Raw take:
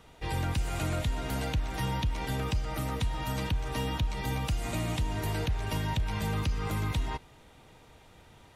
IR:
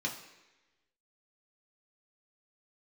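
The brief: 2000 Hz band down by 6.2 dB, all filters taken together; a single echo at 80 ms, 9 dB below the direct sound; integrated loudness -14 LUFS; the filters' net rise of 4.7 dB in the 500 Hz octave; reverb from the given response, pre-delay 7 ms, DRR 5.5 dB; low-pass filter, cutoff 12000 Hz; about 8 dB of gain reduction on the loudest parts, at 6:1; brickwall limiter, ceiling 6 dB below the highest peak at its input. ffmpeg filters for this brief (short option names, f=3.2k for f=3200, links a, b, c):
-filter_complex "[0:a]lowpass=12k,equalizer=f=500:t=o:g=6,equalizer=f=2k:t=o:g=-8.5,acompressor=threshold=-33dB:ratio=6,alimiter=level_in=7dB:limit=-24dB:level=0:latency=1,volume=-7dB,aecho=1:1:80:0.355,asplit=2[a][b];[1:a]atrim=start_sample=2205,adelay=7[c];[b][c]afir=irnorm=-1:irlink=0,volume=-9dB[d];[a][d]amix=inputs=2:normalize=0,volume=25dB"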